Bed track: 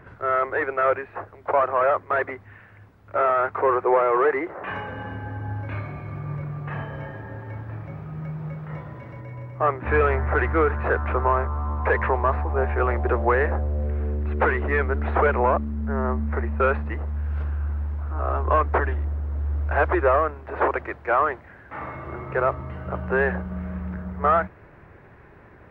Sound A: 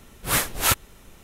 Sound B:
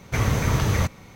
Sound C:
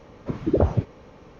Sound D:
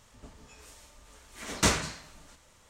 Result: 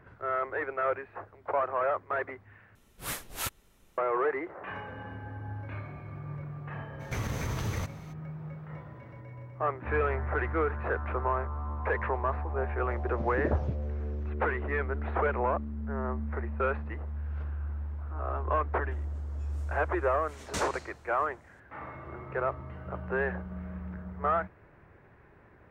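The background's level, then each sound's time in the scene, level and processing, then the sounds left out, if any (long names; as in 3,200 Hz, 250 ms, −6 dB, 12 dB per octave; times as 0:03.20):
bed track −8.5 dB
0:02.75: overwrite with A −14 dB
0:06.99: mix in B −5.5 dB, fades 0.02 s + downward compressor 4 to 1, threshold −24 dBFS
0:12.91: mix in C −11 dB + pitch modulation by a square or saw wave saw down 5.5 Hz, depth 160 cents
0:18.91: mix in D −11.5 dB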